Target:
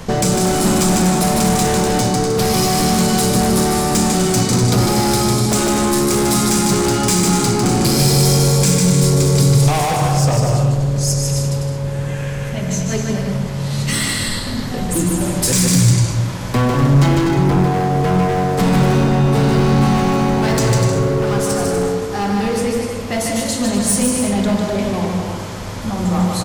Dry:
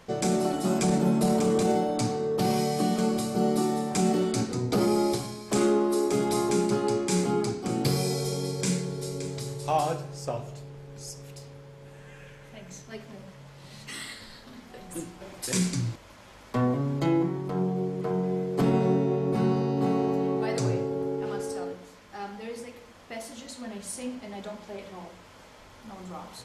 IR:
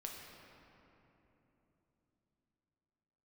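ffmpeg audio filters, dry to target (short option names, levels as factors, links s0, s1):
-filter_complex "[0:a]acrossover=split=750|1000[s0][s1][s2];[s0]acompressor=threshold=0.0224:ratio=6[s3];[s3][s1][s2]amix=inputs=3:normalize=0,alimiter=limit=0.0794:level=0:latency=1:release=414,aecho=1:1:150|247.5|310.9|352.1|378.8:0.631|0.398|0.251|0.158|0.1,asplit=2[s4][s5];[1:a]atrim=start_sample=2205,asetrate=70560,aresample=44100[s6];[s5][s6]afir=irnorm=-1:irlink=0,volume=1.5[s7];[s4][s7]amix=inputs=2:normalize=0,acontrast=86,equalizer=f=770:t=o:w=2.4:g=3.5,asoftclip=type=hard:threshold=0.106,bass=f=250:g=12,treble=f=4000:g=7,volume=1.41"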